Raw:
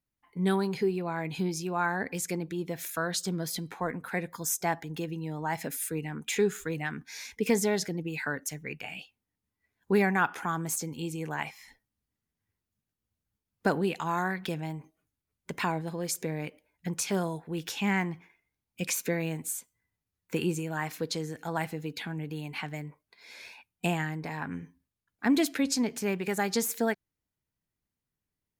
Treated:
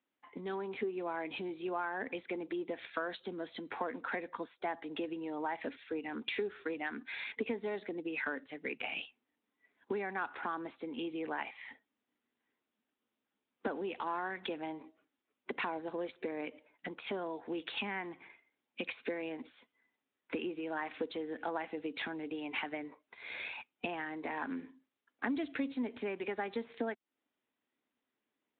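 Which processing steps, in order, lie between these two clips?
in parallel at -12 dB: soft clip -29.5 dBFS, distortion -8 dB; on the sum: compressor 10:1, threshold -38 dBFS, peak gain reduction 19 dB; elliptic high-pass 240 Hz, stop band 70 dB; gain +5.5 dB; Speex 18 kbps 8000 Hz

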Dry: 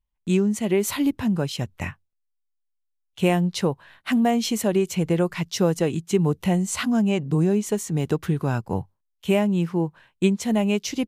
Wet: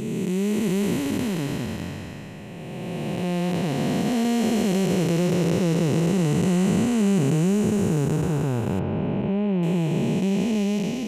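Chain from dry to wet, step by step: time blur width 1.11 s; 8.79–9.63 air absorption 310 m; gain +6.5 dB

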